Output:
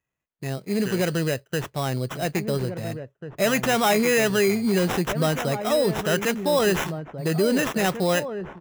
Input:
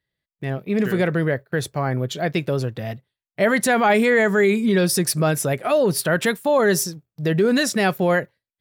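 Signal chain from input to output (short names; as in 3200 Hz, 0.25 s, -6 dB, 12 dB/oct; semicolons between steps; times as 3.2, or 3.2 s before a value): sample-rate reducer 4500 Hz, jitter 0%; outdoor echo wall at 290 m, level -9 dB; gain -3.5 dB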